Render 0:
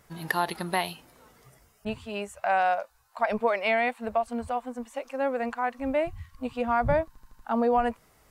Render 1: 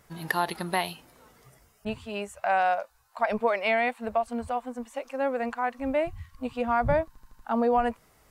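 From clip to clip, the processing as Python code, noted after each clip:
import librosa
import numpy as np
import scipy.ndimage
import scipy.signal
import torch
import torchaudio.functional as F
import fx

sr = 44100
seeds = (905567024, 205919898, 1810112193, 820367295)

y = x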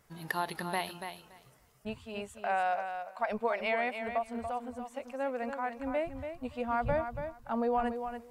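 y = fx.echo_feedback(x, sr, ms=285, feedback_pct=16, wet_db=-8)
y = y * 10.0 ** (-6.5 / 20.0)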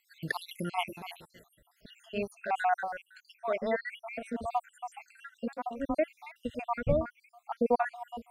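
y = fx.spec_dropout(x, sr, seeds[0], share_pct=69)
y = fx.rotary_switch(y, sr, hz=7.0, then_hz=0.6, switch_at_s=1.69)
y = y * 10.0 ** (8.0 / 20.0)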